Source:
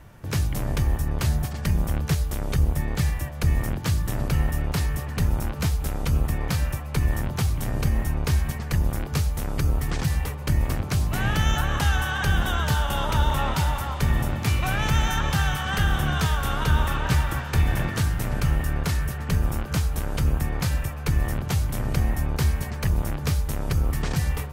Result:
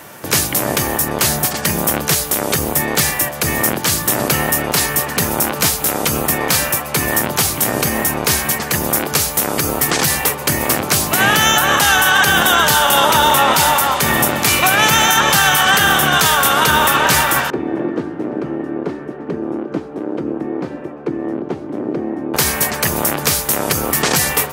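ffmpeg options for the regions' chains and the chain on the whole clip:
-filter_complex "[0:a]asettb=1/sr,asplit=3[a][b][c];[a]atrim=end=17.504[d];[b]atrim=start=17.5:end=22.34,asetpts=PTS-STARTPTS,afade=t=in:d=0.004:c=qsin,afade=t=out:st=4.836:d=0.004:c=qsin,acontrast=30,bandpass=f=320:t=q:w=3.2,aemphasis=mode=reproduction:type=50fm[e];[c]atrim=start=22.336[f];[d][e]acrossfade=d=0.004:c1=hsin:c2=qsin[g];[g][f]acrossfade=d=0.004:c1=qsin:c2=hsin,highpass=300,highshelf=f=6.5k:g=10.5,alimiter=level_in=18dB:limit=-1dB:release=50:level=0:latency=1,volume=-1.5dB"

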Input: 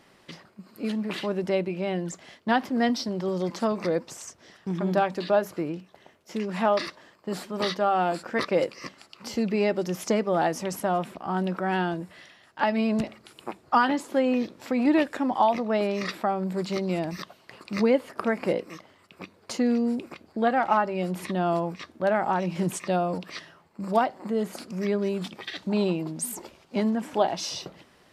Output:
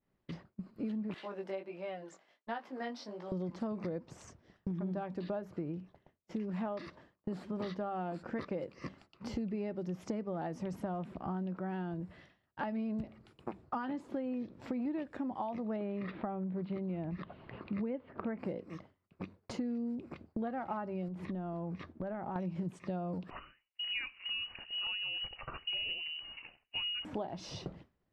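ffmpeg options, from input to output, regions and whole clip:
-filter_complex "[0:a]asettb=1/sr,asplit=3[a][b][c];[a]atrim=end=1.144[d];[b]atrim=start=1.14:end=3.32,asetpts=PTS-STARTPTS,afade=t=in:d=0.004:c=qsin,afade=t=out:st=2.176:d=0.004:c=qsin,highpass=600,flanger=delay=17:depth=4.1:speed=1.4[e];[c]atrim=start=3.316[f];[d][e]acrossfade=d=0.004:c1=hsin:c2=qsin[g];[g][f]acrossfade=d=0.004:c1=qsin:c2=hsin,asettb=1/sr,asplit=3[h][i][j];[h]atrim=end=15.764[k];[i]atrim=start=15.76:end=18.39,asetpts=PTS-STARTPTS,afade=t=in:d=0.004:c=qsin,afade=t=out:st=2.626:d=0.004:c=qsin,lowpass=f=3.4k:w=0.5412,lowpass=f=3.4k:w=1.3066,acompressor=mode=upward:threshold=-36dB:ratio=2.5:attack=3.2:release=140:knee=2.83:detection=peak[l];[j]atrim=start=18.386[m];[k][l]acrossfade=d=0.004:c1=hsin:c2=qsin[n];[n][m]acrossfade=d=0.004:c1=qsin:c2=hsin,asettb=1/sr,asplit=3[o][p][q];[o]atrim=end=21.084[r];[p]atrim=start=21.08:end=22.36,asetpts=PTS-STARTPTS,afade=t=in:d=0.004:c=qsin,afade=t=out:st=1.276:d=0.004:c=qsin,highshelf=f=4.2k:g=-9.5,acompressor=threshold=-35dB:ratio=2.5:attack=3.2:release=140:knee=1:detection=peak[s];[q]atrim=start=22.356[t];[r][s]acrossfade=d=0.004:c1=hsin:c2=qsin[u];[u][t]acrossfade=d=0.004:c1=qsin:c2=hsin,asettb=1/sr,asplit=3[v][w][x];[v]atrim=end=23.304[y];[w]atrim=start=23.3:end=27.05,asetpts=PTS-STARTPTS,afade=t=in:d=0.004:c=qsin,afade=t=out:st=3.746:d=0.004:c=qsin,highpass=f=170:t=q:w=2.1,lowpass=f=2.6k:t=q:w=0.5098,lowpass=f=2.6k:t=q:w=0.6013,lowpass=f=2.6k:t=q:w=0.9,lowpass=f=2.6k:t=q:w=2.563,afreqshift=-3100[z];[x]atrim=start=27.046[aa];[y][z]acrossfade=d=0.004:c1=hsin:c2=qsin[ab];[ab][aa]acrossfade=d=0.004:c1=qsin:c2=hsin,agate=range=-33dB:threshold=-44dB:ratio=3:detection=peak,aemphasis=mode=reproduction:type=riaa,acompressor=threshold=-30dB:ratio=6,volume=-5.5dB"

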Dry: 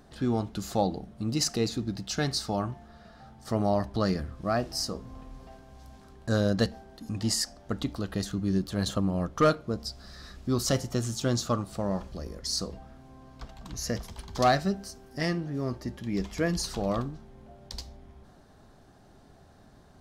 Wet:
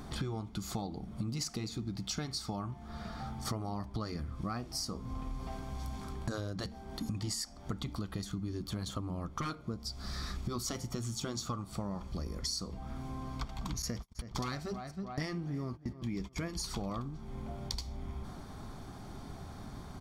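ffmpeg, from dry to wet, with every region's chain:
-filter_complex "[0:a]asettb=1/sr,asplit=3[a][b][c];[a]atrim=end=13.824[d];[b]atrim=start=13.82:end=16.36,asetpts=PTS-STARTPTS,afade=t=in:d=0.004:c=qsin,afade=t=out:st=2.536:d=0.004:c=qsin,agate=range=-38dB:threshold=-39dB:ratio=16:release=100:detection=peak,asplit=2[e][f];[f]adelay=321,lowpass=f=3.2k:p=1,volume=-20dB,asplit=2[g][h];[h]adelay=321,lowpass=f=3.2k:p=1,volume=0.33,asplit=2[i][j];[j]adelay=321,lowpass=f=3.2k:p=1,volume=0.33[k];[e][g][i][k]amix=inputs=4:normalize=0,atrim=end_sample=112014[l];[c]atrim=start=16.356[m];[d][l]acrossfade=d=0.004:c1=hsin:c2=qsin[n];[n][m]acrossfade=d=0.004:c1=qsin:c2=hsin,afftfilt=real='re*lt(hypot(re,im),0.398)':imag='im*lt(hypot(re,im),0.398)':win_size=1024:overlap=0.75,aecho=1:1:0.9:0.42,acompressor=threshold=-43dB:ratio=10,volume=8.5dB"

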